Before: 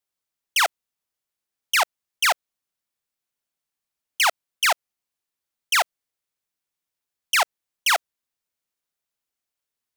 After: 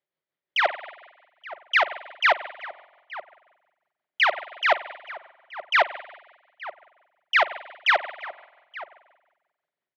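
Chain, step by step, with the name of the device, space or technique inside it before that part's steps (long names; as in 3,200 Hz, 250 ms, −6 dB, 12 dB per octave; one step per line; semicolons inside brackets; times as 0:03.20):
notch filter 2,700 Hz, Q 17
combo amplifier with spring reverb and tremolo (spring reverb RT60 1.2 s, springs 45 ms, chirp 45 ms, DRR 13 dB; amplitude tremolo 5.7 Hz, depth 38%; loudspeaker in its box 110–3,600 Hz, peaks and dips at 160 Hz +9 dB, 370 Hz +9 dB, 580 Hz +10 dB, 1,900 Hz +6 dB)
dynamic equaliser 6,300 Hz, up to −3 dB, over −34 dBFS, Q 0.81
slap from a distant wall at 150 metres, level −15 dB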